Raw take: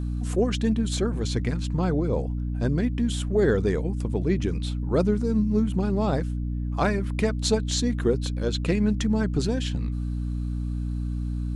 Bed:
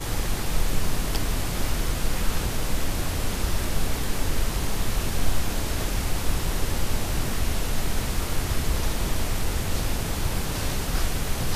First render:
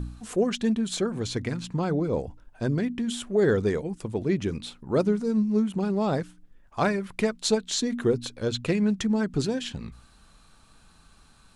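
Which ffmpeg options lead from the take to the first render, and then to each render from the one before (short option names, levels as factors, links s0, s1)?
-af "bandreject=f=60:t=h:w=4,bandreject=f=120:t=h:w=4,bandreject=f=180:t=h:w=4,bandreject=f=240:t=h:w=4,bandreject=f=300:t=h:w=4"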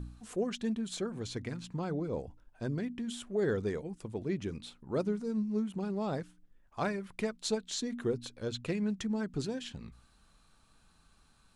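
-af "volume=0.355"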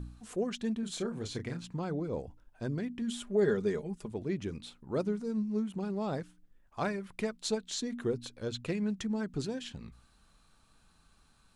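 -filter_complex "[0:a]asettb=1/sr,asplit=3[s0][s1][s2];[s0]atrim=end=0.804[s3];[s1]atrim=start=0.8:end=1.61,asetpts=PTS-STARTPTS,afade=t=in:d=0.004:c=qsin,afade=t=out:st=0.806:d=0.004:c=qsin,asplit=2[s4][s5];[s5]adelay=30,volume=0.447[s6];[s4][s6]amix=inputs=2:normalize=0,atrim=end_sample=35721[s7];[s2]atrim=start=1.606[s8];[s3][s7]acrossfade=d=0.004:c1=hsin:c2=qsin[s9];[s9][s8]acrossfade=d=0.004:c1=qsin:c2=hsin,asettb=1/sr,asplit=3[s10][s11][s12];[s10]atrim=end=3.014[s13];[s11]atrim=start=3.01:end=4.11,asetpts=PTS-STARTPTS,afade=t=in:d=0.004:c=qsin,afade=t=out:st=1.096:d=0.004:c=qsin,aecho=1:1:4.9:0.65,atrim=end_sample=48510[s14];[s12]atrim=start=4.106[s15];[s13][s14]acrossfade=d=0.004:c1=hsin:c2=qsin[s16];[s16][s15]acrossfade=d=0.004:c1=qsin:c2=hsin"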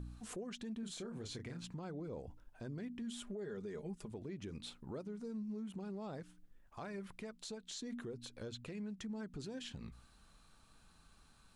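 -af "acompressor=threshold=0.0112:ratio=3,alimiter=level_in=4.47:limit=0.0631:level=0:latency=1:release=137,volume=0.224"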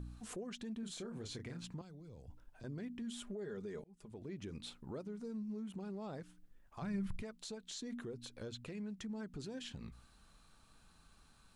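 -filter_complex "[0:a]asettb=1/sr,asplit=3[s0][s1][s2];[s0]atrim=end=1.814[s3];[s1]atrim=start=1.81:end=2.64,asetpts=PTS-STARTPTS,afade=t=in:d=0.004:c=qsin,afade=t=out:st=0.826:d=0.004:c=qsin,acrossover=split=140|3000[s4][s5][s6];[s5]acompressor=threshold=0.00141:ratio=6:attack=3.2:release=140:knee=2.83:detection=peak[s7];[s4][s7][s6]amix=inputs=3:normalize=0[s8];[s2]atrim=start=2.636[s9];[s3][s8]acrossfade=d=0.004:c1=hsin:c2=qsin[s10];[s10][s9]acrossfade=d=0.004:c1=qsin:c2=hsin,asplit=3[s11][s12][s13];[s11]afade=t=out:st=6.81:d=0.02[s14];[s12]asubboost=boost=10.5:cutoff=150,afade=t=in:st=6.81:d=0.02,afade=t=out:st=7.21:d=0.02[s15];[s13]afade=t=in:st=7.21:d=0.02[s16];[s14][s15][s16]amix=inputs=3:normalize=0,asplit=2[s17][s18];[s17]atrim=end=3.84,asetpts=PTS-STARTPTS,afade=t=out:st=3.836:d=0.004:c=hsin[s19];[s18]atrim=start=3.84,asetpts=PTS-STARTPTS,afade=t=in:d=0.48[s20];[s19][s20]concat=n=2:v=0:a=1"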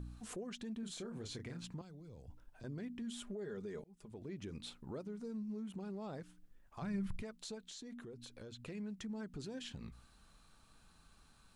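-filter_complex "[0:a]asettb=1/sr,asplit=3[s0][s1][s2];[s0]atrim=end=7.624[s3];[s1]atrim=start=7.62:end=8.6,asetpts=PTS-STARTPTS,afade=t=in:d=0.004:c=qsin,afade=t=out:st=0.976:d=0.004:c=qsin,acompressor=threshold=0.00355:ratio=2.5:attack=3.2:release=140:knee=1:detection=peak[s4];[s2]atrim=start=8.596[s5];[s3][s4]acrossfade=d=0.004:c1=hsin:c2=qsin[s6];[s6][s5]acrossfade=d=0.004:c1=qsin:c2=hsin"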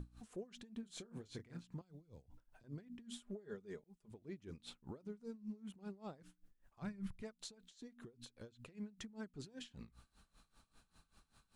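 -af "aeval=exprs='val(0)*pow(10,-20*(0.5-0.5*cos(2*PI*5.1*n/s))/20)':c=same"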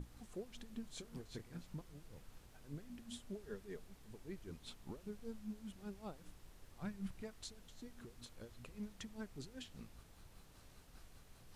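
-filter_complex "[1:a]volume=0.0168[s0];[0:a][s0]amix=inputs=2:normalize=0"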